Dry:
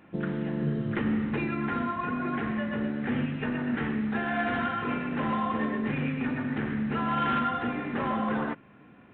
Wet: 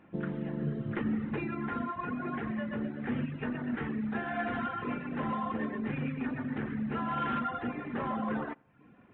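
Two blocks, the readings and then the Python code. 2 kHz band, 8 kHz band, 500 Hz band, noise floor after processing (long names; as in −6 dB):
−6.5 dB, can't be measured, −4.5 dB, −58 dBFS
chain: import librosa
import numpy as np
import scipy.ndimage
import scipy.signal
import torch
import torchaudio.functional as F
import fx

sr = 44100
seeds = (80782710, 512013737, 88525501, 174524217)

y = fx.high_shelf(x, sr, hz=3400.0, db=-9.0)
y = fx.echo_feedback(y, sr, ms=88, feedback_pct=52, wet_db=-19.5)
y = fx.dereverb_blind(y, sr, rt60_s=0.59)
y = F.gain(torch.from_numpy(y), -3.0).numpy()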